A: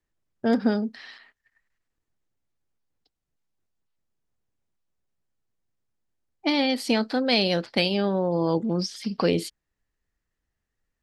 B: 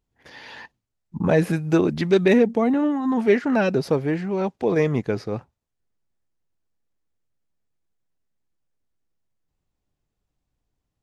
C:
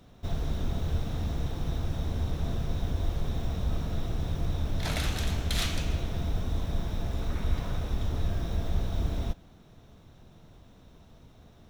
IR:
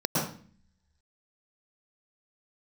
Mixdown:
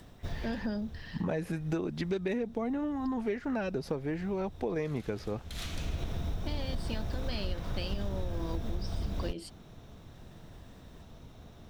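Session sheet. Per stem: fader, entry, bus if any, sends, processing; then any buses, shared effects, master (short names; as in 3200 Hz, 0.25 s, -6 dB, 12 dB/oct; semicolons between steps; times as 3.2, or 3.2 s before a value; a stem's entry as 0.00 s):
-10.0 dB, 0.00 s, no send, upward compressor, threshold -31 dBFS; ripple EQ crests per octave 1.3, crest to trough 8 dB
-4.5 dB, 0.00 s, no send, dry
+3.0 dB, 0.00 s, no send, auto duck -19 dB, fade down 0.75 s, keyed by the second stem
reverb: off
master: compressor, threshold -30 dBFS, peak gain reduction 13 dB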